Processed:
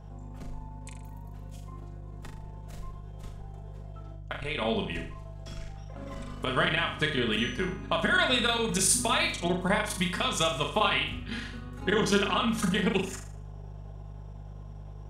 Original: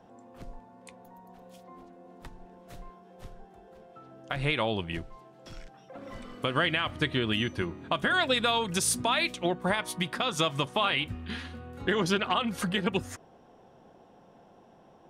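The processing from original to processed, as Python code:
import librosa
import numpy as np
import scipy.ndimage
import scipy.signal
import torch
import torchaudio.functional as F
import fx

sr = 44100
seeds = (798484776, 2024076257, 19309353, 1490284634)

y = fx.peak_eq(x, sr, hz=7400.0, db=5.5, octaves=0.59)
y = y + 0.52 * np.pad(y, (int(4.8 * sr / 1000.0), 0))[:len(y)]
y = fx.level_steps(y, sr, step_db=16, at=(4.14, 4.61), fade=0.02)
y = fx.dmg_buzz(y, sr, base_hz=50.0, harmonics=3, level_db=-47.0, tilt_db=-3, odd_only=False)
y = fx.chopper(y, sr, hz=9.9, depth_pct=60, duty_pct=85)
y = fx.room_flutter(y, sr, wall_m=6.8, rt60_s=0.46)
y = y * librosa.db_to_amplitude(-1.0)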